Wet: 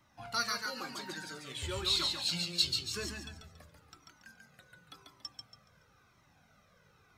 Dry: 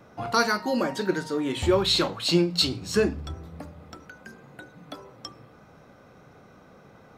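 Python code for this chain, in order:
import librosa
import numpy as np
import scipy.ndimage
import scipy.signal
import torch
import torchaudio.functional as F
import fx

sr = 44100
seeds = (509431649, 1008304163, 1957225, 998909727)

y = fx.tone_stack(x, sr, knobs='5-5-5')
y = fx.echo_feedback(y, sr, ms=141, feedback_pct=34, wet_db=-4)
y = fx.comb_cascade(y, sr, direction='falling', hz=0.97)
y = F.gain(torch.from_numpy(y), 4.5).numpy()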